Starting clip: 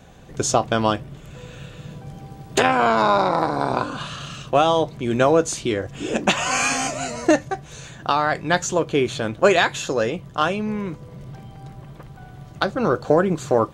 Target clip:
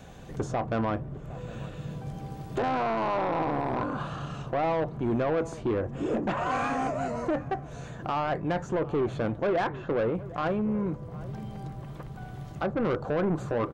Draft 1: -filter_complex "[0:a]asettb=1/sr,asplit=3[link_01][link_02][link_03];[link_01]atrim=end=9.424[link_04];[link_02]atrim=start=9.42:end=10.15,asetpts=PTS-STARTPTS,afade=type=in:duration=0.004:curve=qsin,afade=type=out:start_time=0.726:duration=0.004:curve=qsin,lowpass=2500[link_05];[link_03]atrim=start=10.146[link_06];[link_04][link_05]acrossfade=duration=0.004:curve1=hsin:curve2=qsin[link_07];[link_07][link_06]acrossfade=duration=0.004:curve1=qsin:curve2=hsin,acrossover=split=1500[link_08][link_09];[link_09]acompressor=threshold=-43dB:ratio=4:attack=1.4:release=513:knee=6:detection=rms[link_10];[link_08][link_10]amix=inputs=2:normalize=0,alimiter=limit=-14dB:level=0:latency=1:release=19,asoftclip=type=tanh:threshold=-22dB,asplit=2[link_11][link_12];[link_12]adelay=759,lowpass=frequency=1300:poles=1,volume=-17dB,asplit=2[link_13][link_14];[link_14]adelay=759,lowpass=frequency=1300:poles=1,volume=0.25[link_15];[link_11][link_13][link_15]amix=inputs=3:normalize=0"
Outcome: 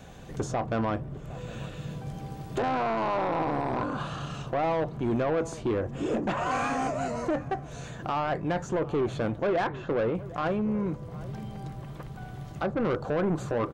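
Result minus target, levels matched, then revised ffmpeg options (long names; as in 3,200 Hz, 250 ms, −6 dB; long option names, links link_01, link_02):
downward compressor: peak gain reduction −5.5 dB
-filter_complex "[0:a]asettb=1/sr,asplit=3[link_01][link_02][link_03];[link_01]atrim=end=9.424[link_04];[link_02]atrim=start=9.42:end=10.15,asetpts=PTS-STARTPTS,afade=type=in:duration=0.004:curve=qsin,afade=type=out:start_time=0.726:duration=0.004:curve=qsin,lowpass=2500[link_05];[link_03]atrim=start=10.146[link_06];[link_04][link_05]acrossfade=duration=0.004:curve1=hsin:curve2=qsin[link_07];[link_07][link_06]acrossfade=duration=0.004:curve1=qsin:curve2=hsin,acrossover=split=1500[link_08][link_09];[link_09]acompressor=threshold=-50.5dB:ratio=4:attack=1.4:release=513:knee=6:detection=rms[link_10];[link_08][link_10]amix=inputs=2:normalize=0,alimiter=limit=-14dB:level=0:latency=1:release=19,asoftclip=type=tanh:threshold=-22dB,asplit=2[link_11][link_12];[link_12]adelay=759,lowpass=frequency=1300:poles=1,volume=-17dB,asplit=2[link_13][link_14];[link_14]adelay=759,lowpass=frequency=1300:poles=1,volume=0.25[link_15];[link_11][link_13][link_15]amix=inputs=3:normalize=0"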